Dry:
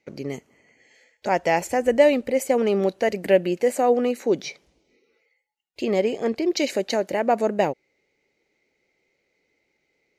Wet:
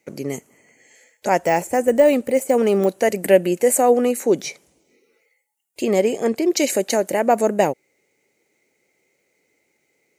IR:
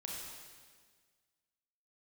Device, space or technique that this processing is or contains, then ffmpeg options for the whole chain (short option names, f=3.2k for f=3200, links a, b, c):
budget condenser microphone: -filter_complex "[0:a]highpass=98,highshelf=f=6.3k:t=q:w=1.5:g=11.5,asettb=1/sr,asplit=3[a][b][c];[a]atrim=end=1.374[d];[b]atrim=start=1.37:end=3,asetpts=PTS-STARTPTS,afade=t=in:d=0.004:c=qsin,afade=t=out:st=1.626:d=0.004:c=qsin,deesser=0.75[e];[c]atrim=start=2.996[f];[d][e]acrossfade=d=0.004:c1=hsin:c2=qsin[g];[g][f]acrossfade=d=0.004:c1=qsin:c2=hsin,volume=4dB"